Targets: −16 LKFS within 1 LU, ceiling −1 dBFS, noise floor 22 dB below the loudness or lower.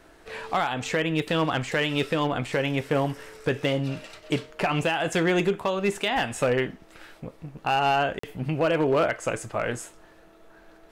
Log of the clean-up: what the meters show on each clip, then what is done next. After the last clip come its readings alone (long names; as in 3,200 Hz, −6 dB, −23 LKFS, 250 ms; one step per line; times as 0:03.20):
share of clipped samples 0.6%; peaks flattened at −16.0 dBFS; number of dropouts 1; longest dropout 44 ms; integrated loudness −26.0 LKFS; sample peak −16.0 dBFS; target loudness −16.0 LKFS
→ clipped peaks rebuilt −16 dBFS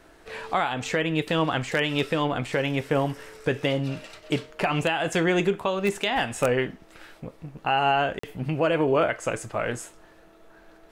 share of clipped samples 0.0%; number of dropouts 1; longest dropout 44 ms
→ repair the gap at 0:08.19, 44 ms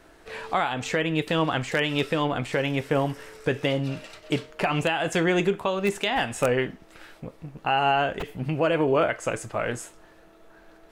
number of dropouts 0; integrated loudness −25.5 LKFS; sample peak −7.0 dBFS; target loudness −16.0 LKFS
→ level +9.5 dB
brickwall limiter −1 dBFS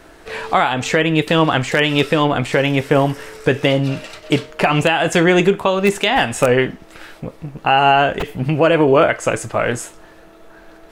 integrated loudness −16.0 LKFS; sample peak −1.0 dBFS; background noise floor −44 dBFS